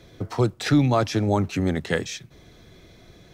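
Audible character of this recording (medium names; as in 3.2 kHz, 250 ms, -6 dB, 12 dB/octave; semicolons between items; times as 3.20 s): noise floor -52 dBFS; spectral tilt -6.0 dB/octave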